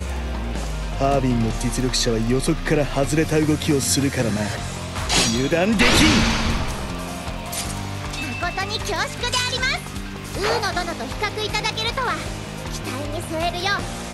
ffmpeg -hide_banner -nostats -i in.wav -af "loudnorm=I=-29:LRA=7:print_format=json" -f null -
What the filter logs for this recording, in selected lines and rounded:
"input_i" : "-22.2",
"input_tp" : "-2.3",
"input_lra" : "5.4",
"input_thresh" : "-32.2",